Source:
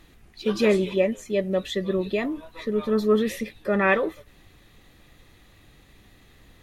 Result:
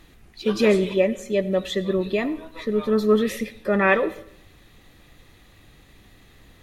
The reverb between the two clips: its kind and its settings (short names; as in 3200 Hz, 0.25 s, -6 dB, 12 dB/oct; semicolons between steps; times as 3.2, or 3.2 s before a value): digital reverb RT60 0.68 s, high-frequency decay 0.9×, pre-delay 40 ms, DRR 17 dB; gain +2 dB